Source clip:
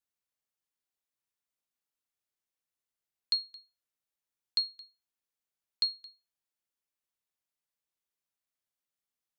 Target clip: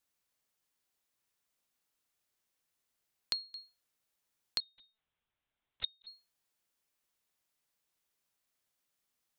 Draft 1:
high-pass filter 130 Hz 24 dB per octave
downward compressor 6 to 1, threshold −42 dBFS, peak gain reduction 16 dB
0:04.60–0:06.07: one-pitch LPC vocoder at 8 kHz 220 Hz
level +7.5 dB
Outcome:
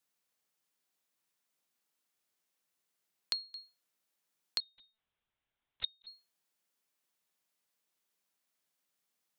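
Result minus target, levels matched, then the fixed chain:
125 Hz band −4.0 dB
downward compressor 6 to 1, threshold −42 dBFS, peak gain reduction 16 dB
0:04.60–0:06.07: one-pitch LPC vocoder at 8 kHz 220 Hz
level +7.5 dB

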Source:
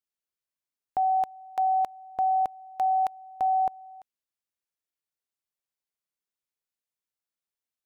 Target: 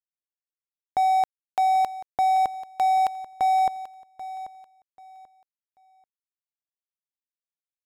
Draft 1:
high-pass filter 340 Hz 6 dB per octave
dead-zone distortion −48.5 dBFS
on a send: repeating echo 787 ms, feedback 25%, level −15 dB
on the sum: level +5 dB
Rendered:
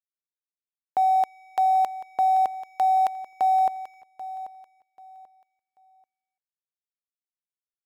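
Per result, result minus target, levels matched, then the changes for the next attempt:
250 Hz band −4.0 dB; dead-zone distortion: distortion −5 dB
remove: high-pass filter 340 Hz 6 dB per octave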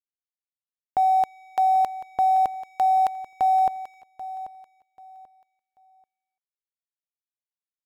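dead-zone distortion: distortion −6 dB
change: dead-zone distortion −38 dBFS

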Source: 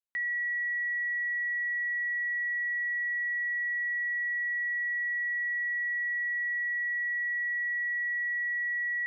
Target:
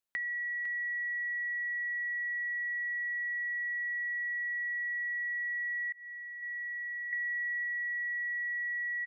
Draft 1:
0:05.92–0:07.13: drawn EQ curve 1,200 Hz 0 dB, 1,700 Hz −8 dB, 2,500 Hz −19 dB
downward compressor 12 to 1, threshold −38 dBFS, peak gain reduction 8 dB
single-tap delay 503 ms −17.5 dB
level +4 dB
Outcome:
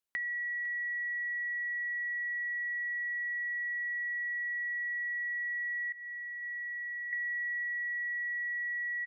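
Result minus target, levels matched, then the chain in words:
echo-to-direct −6 dB
0:05.92–0:07.13: drawn EQ curve 1,200 Hz 0 dB, 1,700 Hz −8 dB, 2,500 Hz −19 dB
downward compressor 12 to 1, threshold −38 dBFS, peak gain reduction 8 dB
single-tap delay 503 ms −11.5 dB
level +4 dB

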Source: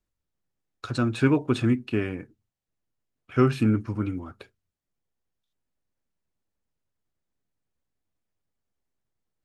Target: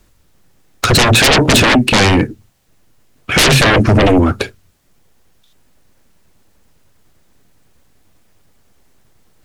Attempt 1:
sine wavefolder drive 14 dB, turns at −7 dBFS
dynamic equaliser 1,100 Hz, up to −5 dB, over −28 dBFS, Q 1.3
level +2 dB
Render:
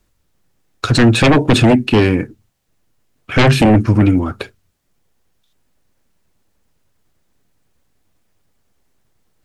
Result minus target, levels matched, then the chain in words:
sine wavefolder: distortion −16 dB
sine wavefolder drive 24 dB, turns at −7 dBFS
dynamic equaliser 1,100 Hz, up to −5 dB, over −28 dBFS, Q 1.3
level +2 dB

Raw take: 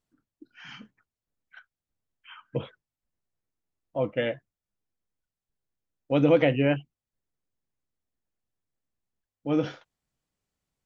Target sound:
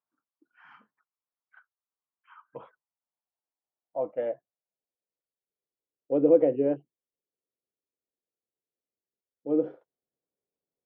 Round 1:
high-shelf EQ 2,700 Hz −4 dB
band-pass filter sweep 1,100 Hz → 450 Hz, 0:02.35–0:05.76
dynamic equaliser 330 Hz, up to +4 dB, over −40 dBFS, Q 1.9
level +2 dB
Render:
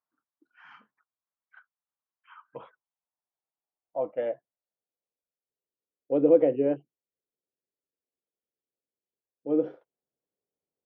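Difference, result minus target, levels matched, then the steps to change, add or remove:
4,000 Hz band +5.0 dB
change: high-shelf EQ 2,700 Hz −13.5 dB

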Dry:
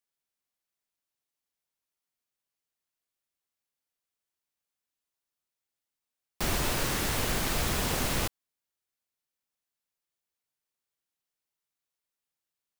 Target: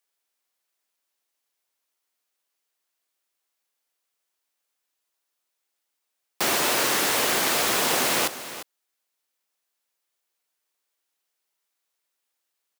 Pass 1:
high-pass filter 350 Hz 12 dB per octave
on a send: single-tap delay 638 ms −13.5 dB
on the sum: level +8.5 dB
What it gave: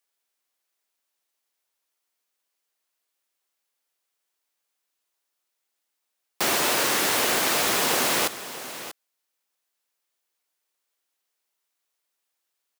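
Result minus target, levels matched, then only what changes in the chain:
echo 288 ms late
change: single-tap delay 350 ms −13.5 dB

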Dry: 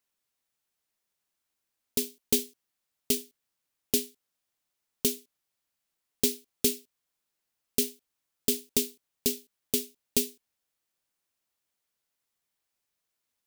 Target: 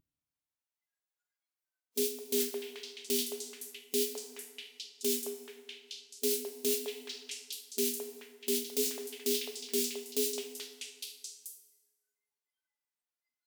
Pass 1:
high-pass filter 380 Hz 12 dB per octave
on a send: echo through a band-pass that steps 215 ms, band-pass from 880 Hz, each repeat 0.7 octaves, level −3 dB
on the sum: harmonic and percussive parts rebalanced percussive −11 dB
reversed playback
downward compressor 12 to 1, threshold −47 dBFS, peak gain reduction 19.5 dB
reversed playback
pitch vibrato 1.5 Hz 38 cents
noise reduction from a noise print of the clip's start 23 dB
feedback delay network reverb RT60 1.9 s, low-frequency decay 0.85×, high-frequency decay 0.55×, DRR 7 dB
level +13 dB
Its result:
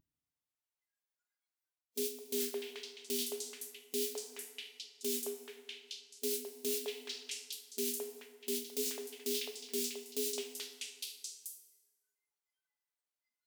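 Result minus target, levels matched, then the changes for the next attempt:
downward compressor: peak gain reduction +5.5 dB
change: downward compressor 12 to 1, threshold −41 dBFS, peak gain reduction 14 dB

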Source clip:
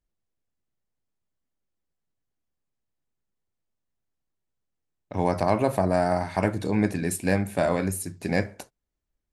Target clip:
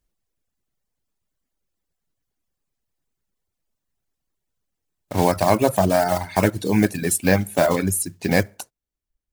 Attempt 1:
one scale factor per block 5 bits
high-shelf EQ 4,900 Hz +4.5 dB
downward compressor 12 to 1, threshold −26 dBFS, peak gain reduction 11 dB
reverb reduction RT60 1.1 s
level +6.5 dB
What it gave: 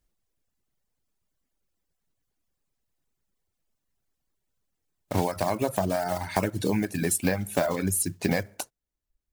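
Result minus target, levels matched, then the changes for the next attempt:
downward compressor: peak gain reduction +11 dB
remove: downward compressor 12 to 1, threshold −26 dBFS, peak gain reduction 11 dB

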